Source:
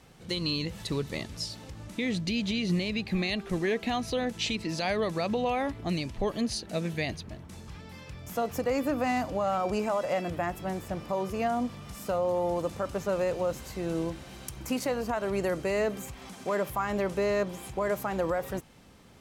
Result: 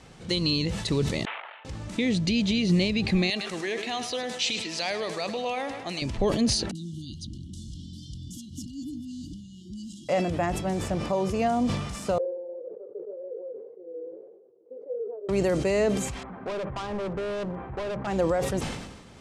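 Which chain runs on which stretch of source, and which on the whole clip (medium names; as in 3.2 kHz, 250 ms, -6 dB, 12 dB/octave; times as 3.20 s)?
1.25–1.65 s: CVSD coder 16 kbps + high-pass 730 Hz 24 dB/octave + level held to a coarse grid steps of 12 dB
3.30–6.02 s: high-pass 1 kHz 6 dB/octave + companded quantiser 8-bit + feedback delay 105 ms, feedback 52%, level -12.5 dB
6.71–10.09 s: compression 3:1, threshold -40 dBFS + brick-wall FIR band-stop 350–2800 Hz + bands offset in time lows, highs 40 ms, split 2.1 kHz
12.18–15.29 s: Butterworth band-pass 450 Hz, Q 5.2 + flange 1.8 Hz, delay 4.5 ms, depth 8.4 ms, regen -48%
16.23–18.07 s: low-pass 1.6 kHz 24 dB/octave + overload inside the chain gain 33 dB + hum notches 50/100/150/200/250/300/350 Hz
whole clip: dynamic bell 1.4 kHz, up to -6 dB, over -43 dBFS, Q 0.83; low-pass 9.5 kHz 24 dB/octave; decay stretcher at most 50 dB/s; trim +5.5 dB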